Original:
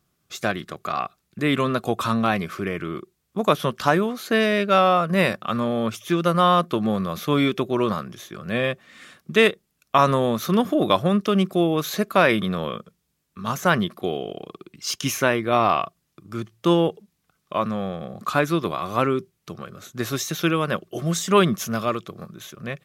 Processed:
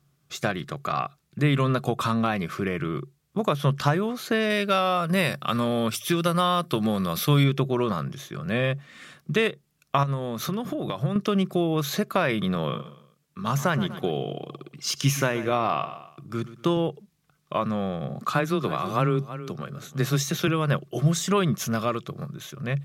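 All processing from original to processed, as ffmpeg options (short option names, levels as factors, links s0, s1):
-filter_complex "[0:a]asettb=1/sr,asplit=3[s0][s1][s2];[s0]atrim=end=4.504[s3];[s1]atrim=start=4.5:end=7.44,asetpts=PTS-STARTPTS,afade=t=in:d=0.004:c=qsin,afade=t=out:st=2.936:d=0.004:c=qsin,highshelf=f=3500:g=12,bandreject=f=6600:w=6.2[s4];[s2]atrim=start=7.436[s5];[s3][s4]acrossfade=d=0.004:c1=hsin:c2=qsin[s6];[s6][s5]acrossfade=d=0.004:c1=qsin:c2=hsin,asettb=1/sr,asplit=3[s7][s8][s9];[s7]atrim=end=10.034[s10];[s8]atrim=start=10.03:end=11.16,asetpts=PTS-STARTPTS,afade=t=in:d=0.004:c=qsin,afade=t=out:st=1.126:d=0.004:c=qsin,highpass=59,acompressor=threshold=0.0562:ratio=12:attack=3.2:release=140:knee=1:detection=peak[s11];[s9]atrim=start=11.156[s12];[s10][s11]acrossfade=d=0.004:c1=hsin:c2=qsin[s13];[s13][s12]acrossfade=d=0.004:c1=qsin:c2=hsin,asettb=1/sr,asplit=3[s14][s15][s16];[s14]atrim=end=12.554[s17];[s15]atrim=start=12.55:end=16.77,asetpts=PTS-STARTPTS,afade=t=in:d=0.004:c=qsin,afade=t=out:st=4.216:d=0.004:c=qsin,highpass=95,aecho=1:1:121|242|363:0.168|0.0638|0.0242,atrim=end_sample=186102[s18];[s16]atrim=start=16.766[s19];[s17][s18]acrossfade=d=0.004:c1=hsin:c2=qsin[s20];[s20][s19]acrossfade=d=0.004:c1=qsin:c2=hsin,asettb=1/sr,asplit=3[s21][s22][s23];[s21]atrim=end=18.094[s24];[s22]atrim=start=18.09:end=20.48,asetpts=PTS-STARTPTS,afade=t=in:d=0.004:c=qsin,afade=t=out:st=2.386:d=0.004:c=qsin,aecho=1:1:325:0.141,atrim=end_sample=105399,afreqshift=13[s25];[s23]atrim=start=20.476[s26];[s24][s25]acrossfade=d=0.004:c1=hsin:c2=qsin[s27];[s27][s26]acrossfade=d=0.004:c1=qsin:c2=hsin,highshelf=f=11000:g=-3.5,acompressor=threshold=0.0891:ratio=3,equalizer=f=140:w=7.1:g=14"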